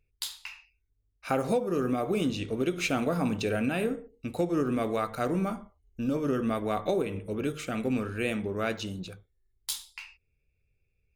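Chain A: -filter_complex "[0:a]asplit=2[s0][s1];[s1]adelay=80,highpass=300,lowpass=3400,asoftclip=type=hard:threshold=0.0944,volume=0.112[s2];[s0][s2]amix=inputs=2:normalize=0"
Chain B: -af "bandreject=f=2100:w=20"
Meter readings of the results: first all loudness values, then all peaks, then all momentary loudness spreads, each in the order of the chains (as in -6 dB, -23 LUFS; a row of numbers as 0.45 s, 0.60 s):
-30.5 LUFS, -30.5 LUFS; -12.5 dBFS, -12.5 dBFS; 13 LU, 13 LU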